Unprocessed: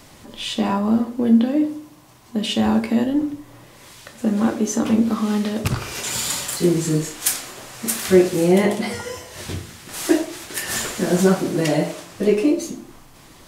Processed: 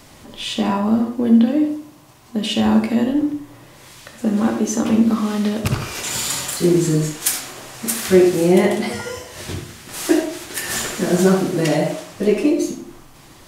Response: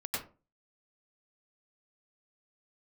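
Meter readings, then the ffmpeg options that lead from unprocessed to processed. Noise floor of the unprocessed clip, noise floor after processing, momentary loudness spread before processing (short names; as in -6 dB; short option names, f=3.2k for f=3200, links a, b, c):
-47 dBFS, -45 dBFS, 14 LU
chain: -filter_complex "[0:a]asplit=2[a][b];[1:a]atrim=start_sample=2205,asetrate=61740,aresample=44100[c];[b][c]afir=irnorm=-1:irlink=0,volume=-5.5dB[d];[a][d]amix=inputs=2:normalize=0,volume=-1dB"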